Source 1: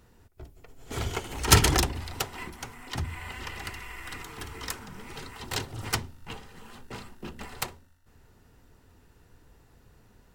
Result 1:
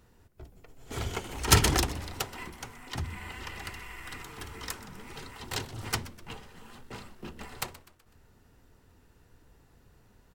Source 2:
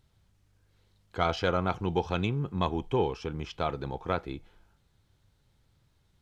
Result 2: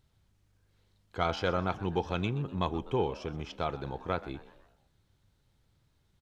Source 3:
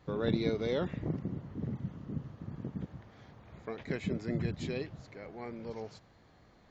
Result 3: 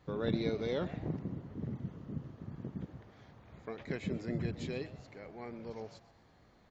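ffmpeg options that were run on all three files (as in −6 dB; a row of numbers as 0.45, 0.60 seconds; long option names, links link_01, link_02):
-filter_complex "[0:a]asplit=5[link_01][link_02][link_03][link_04][link_05];[link_02]adelay=125,afreqshift=120,volume=-18dB[link_06];[link_03]adelay=250,afreqshift=240,volume=-24.7dB[link_07];[link_04]adelay=375,afreqshift=360,volume=-31.5dB[link_08];[link_05]adelay=500,afreqshift=480,volume=-38.2dB[link_09];[link_01][link_06][link_07][link_08][link_09]amix=inputs=5:normalize=0,volume=-2.5dB"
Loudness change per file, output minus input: −2.5, −2.0, −2.5 LU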